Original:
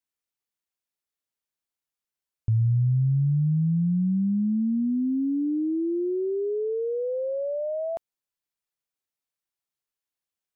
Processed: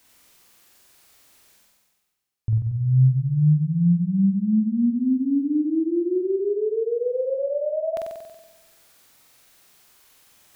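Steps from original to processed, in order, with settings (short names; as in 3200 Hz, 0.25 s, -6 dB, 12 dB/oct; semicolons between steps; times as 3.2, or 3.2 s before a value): reverse; upward compressor, threshold -35 dBFS; reverse; flutter echo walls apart 8 m, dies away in 1.1 s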